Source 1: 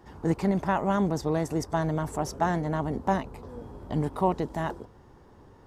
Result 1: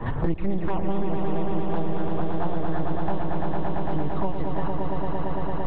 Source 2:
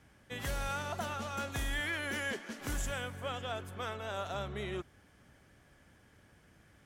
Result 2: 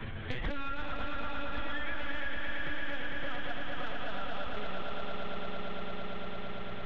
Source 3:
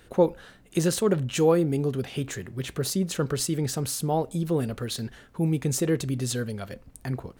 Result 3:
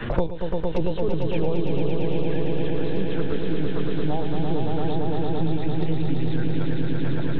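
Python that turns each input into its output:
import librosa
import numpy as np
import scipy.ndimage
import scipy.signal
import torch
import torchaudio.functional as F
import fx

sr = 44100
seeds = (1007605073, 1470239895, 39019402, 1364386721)

y = fx.peak_eq(x, sr, hz=480.0, db=-4.0, octaves=0.28)
y = fx.lpc_vocoder(y, sr, seeds[0], excitation='pitch_kept', order=10)
y = fx.env_flanger(y, sr, rest_ms=9.4, full_db=-21.5)
y = fx.echo_swell(y, sr, ms=113, loudest=5, wet_db=-6.0)
y = fx.band_squash(y, sr, depth_pct=100)
y = y * librosa.db_to_amplitude(-1.5)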